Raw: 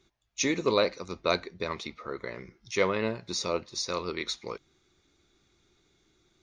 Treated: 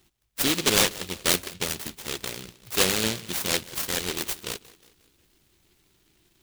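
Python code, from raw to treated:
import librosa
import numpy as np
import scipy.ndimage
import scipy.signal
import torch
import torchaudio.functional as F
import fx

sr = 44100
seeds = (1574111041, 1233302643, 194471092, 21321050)

p1 = x + fx.echo_feedback(x, sr, ms=180, feedback_pct=48, wet_db=-20, dry=0)
p2 = fx.noise_mod_delay(p1, sr, seeds[0], noise_hz=3100.0, depth_ms=0.41)
y = p2 * librosa.db_to_amplitude(3.5)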